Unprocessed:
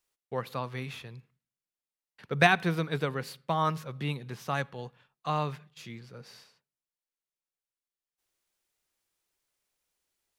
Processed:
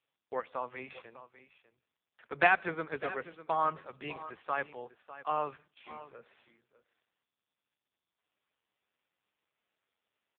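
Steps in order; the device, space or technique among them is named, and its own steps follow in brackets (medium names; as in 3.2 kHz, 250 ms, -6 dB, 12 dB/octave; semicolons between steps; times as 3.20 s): satellite phone (band-pass 380–3100 Hz; delay 600 ms -15 dB; AMR-NB 5.15 kbps 8 kHz)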